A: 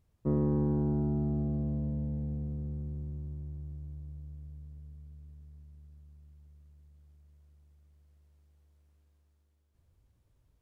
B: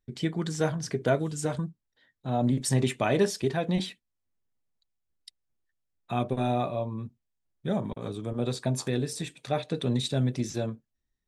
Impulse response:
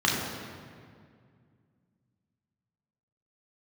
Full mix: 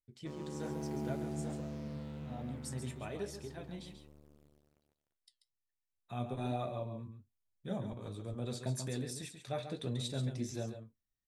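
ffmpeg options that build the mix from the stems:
-filter_complex "[0:a]highpass=f=730:p=1,dynaudnorm=f=110:g=13:m=13dB,acrusher=bits=6:mix=0:aa=0.5,volume=-5.5dB[a];[1:a]highshelf=f=6.4k:g=7,flanger=delay=8.3:depth=1.9:regen=-63:speed=0.75:shape=triangular,volume=-2.5dB,afade=t=in:st=5.7:d=0.76:silence=0.398107,asplit=2[b][c];[c]volume=-8.5dB,aecho=0:1:137:1[d];[a][b][d]amix=inputs=3:normalize=0,equalizer=f=95:w=3.8:g=9.5,flanger=delay=1.5:depth=6.9:regen=77:speed=1.2:shape=sinusoidal"

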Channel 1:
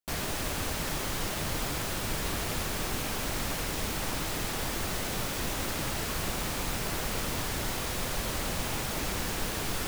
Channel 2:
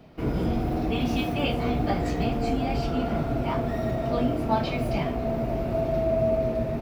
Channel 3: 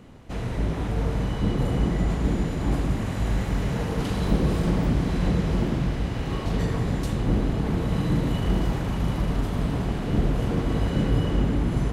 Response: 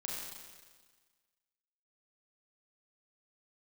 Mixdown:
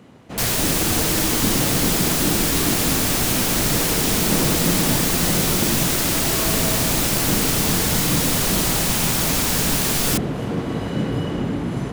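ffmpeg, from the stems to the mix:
-filter_complex "[0:a]highshelf=f=3.3k:g=10,acontrast=64,adelay=300,volume=0.5dB[a];[1:a]bandpass=f=320:t=q:w=2.7:csg=0,adelay=400,volume=3dB[b];[2:a]highpass=130,volume=2.5dB[c];[a][b][c]amix=inputs=3:normalize=0"

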